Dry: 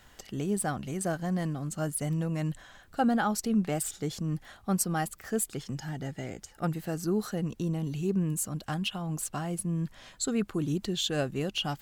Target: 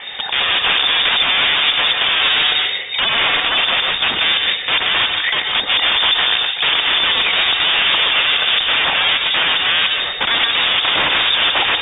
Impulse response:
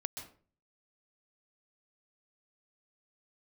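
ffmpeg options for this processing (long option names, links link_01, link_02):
-filter_complex "[0:a]acrossover=split=160[link_01][link_02];[link_02]asoftclip=type=tanh:threshold=-32dB[link_03];[link_01][link_03]amix=inputs=2:normalize=0,acrusher=bits=8:mode=log:mix=0:aa=0.000001,aresample=16000,aeval=exprs='(mod(59.6*val(0)+1,2)-1)/59.6':channel_layout=same,aresample=44100[link_04];[1:a]atrim=start_sample=2205[link_05];[link_04][link_05]afir=irnorm=-1:irlink=0,lowpass=frequency=3100:width_type=q:width=0.5098,lowpass=frequency=3100:width_type=q:width=0.6013,lowpass=frequency=3100:width_type=q:width=0.9,lowpass=frequency=3100:width_type=q:width=2.563,afreqshift=-3700,alimiter=level_in=33.5dB:limit=-1dB:release=50:level=0:latency=1,volume=-4.5dB"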